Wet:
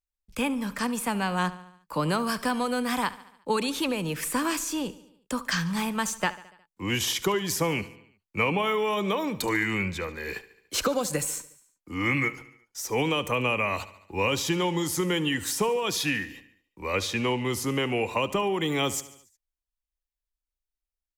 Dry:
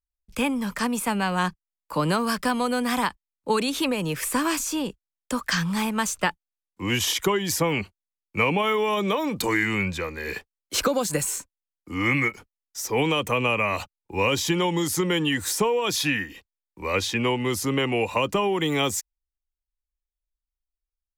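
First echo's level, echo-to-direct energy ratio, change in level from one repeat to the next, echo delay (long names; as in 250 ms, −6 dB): −17.5 dB, −16.0 dB, −4.5 dB, 72 ms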